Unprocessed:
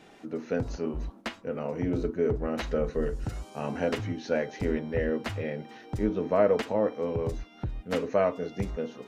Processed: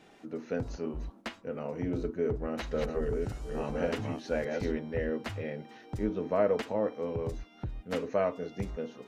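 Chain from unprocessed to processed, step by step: 2.14–4.72 s: chunks repeated in reverse 577 ms, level -3.5 dB; trim -4 dB

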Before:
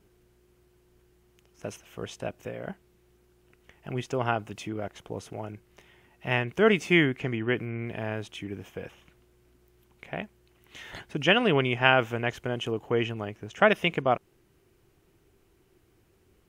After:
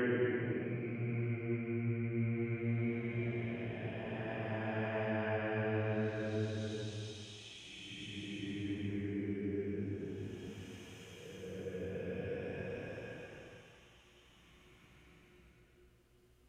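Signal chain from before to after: low-pass that closes with the level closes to 980 Hz, closed at -20 dBFS; rotary cabinet horn 0.75 Hz, later 5 Hz, at 5.28 s; Paulstretch 9.7×, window 0.25 s, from 7.54 s; trim -2.5 dB

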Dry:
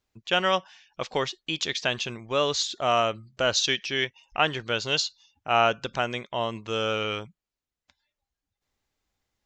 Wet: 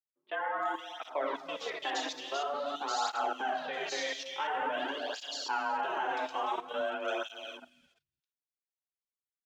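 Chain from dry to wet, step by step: plate-style reverb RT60 1.7 s, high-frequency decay 0.55×, DRR -2.5 dB; frequency shift +140 Hz; level held to a coarse grid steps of 14 dB; hysteresis with a dead band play -52 dBFS; peaking EQ 1 kHz +3.5 dB 1.3 oct; gate -44 dBFS, range -15 dB; treble shelf 5.8 kHz -4.5 dB; three bands offset in time mids, lows, highs 210/340 ms, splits 180/2800 Hz; time-frequency box 0.35–0.78 s, 2.2–6.5 kHz -12 dB; cancelling through-zero flanger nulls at 0.48 Hz, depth 5.4 ms; trim -3.5 dB

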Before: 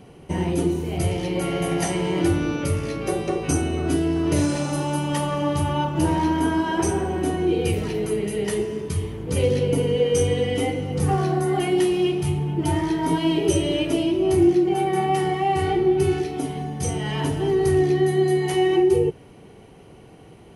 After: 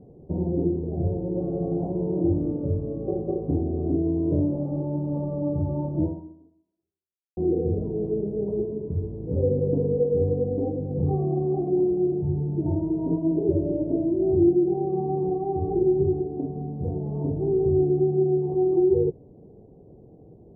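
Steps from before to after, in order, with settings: inverse Chebyshev low-pass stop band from 1.6 kHz, stop band 50 dB; 6.02–7.37 s: fade out exponential; 15.21–15.83 s: doubling 38 ms -5.5 dB; trim -2 dB

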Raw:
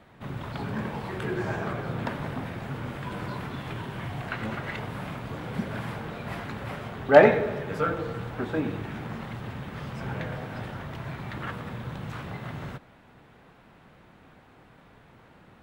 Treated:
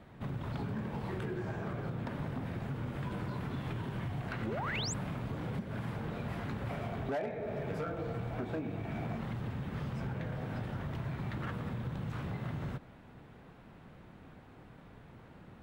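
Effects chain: bass shelf 430 Hz +7.5 dB; compression 12:1, threshold -29 dBFS, peak gain reduction 23.5 dB; 6.69–9.17 s: small resonant body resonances 680/2300 Hz, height 9 dB -> 12 dB, ringing for 35 ms; hard clipper -26 dBFS, distortion -22 dB; 4.46–4.94 s: painted sound rise 290–8300 Hz -34 dBFS; trim -4.5 dB

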